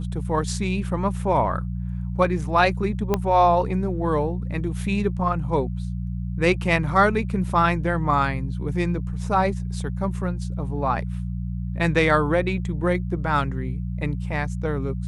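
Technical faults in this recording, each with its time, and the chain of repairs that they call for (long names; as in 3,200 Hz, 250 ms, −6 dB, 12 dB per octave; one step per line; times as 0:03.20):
mains hum 60 Hz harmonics 3 −28 dBFS
0:03.14: click −8 dBFS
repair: click removal
hum removal 60 Hz, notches 3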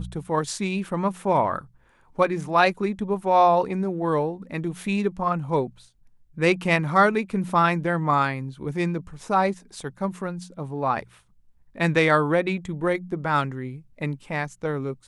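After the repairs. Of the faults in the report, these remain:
0:03.14: click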